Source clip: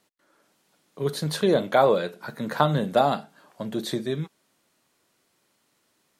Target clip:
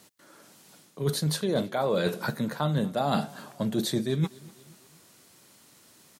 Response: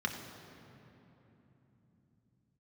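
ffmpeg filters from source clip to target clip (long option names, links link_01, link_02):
-af "highpass=54,bass=frequency=250:gain=6,treble=frequency=4000:gain=6,areverse,acompressor=threshold=-32dB:ratio=20,areverse,aecho=1:1:243|486|729:0.0708|0.0354|0.0177,volume=9dB"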